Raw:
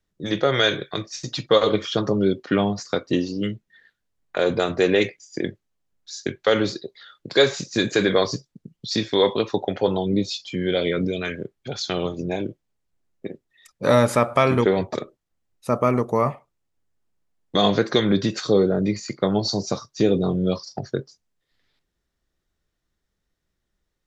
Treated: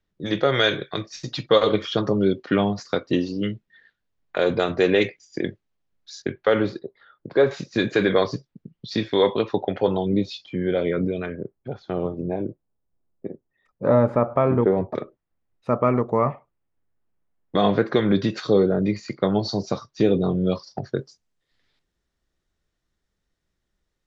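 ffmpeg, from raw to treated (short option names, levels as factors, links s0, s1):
-af "asetnsamples=n=441:p=0,asendcmd='6.22 lowpass f 2200;6.79 lowpass f 1300;7.51 lowpass f 3100;10.46 lowpass f 1700;11.26 lowpass f 1000;14.95 lowpass f 2200;18.11 lowpass f 3700;20.98 lowpass f 9300',lowpass=4600"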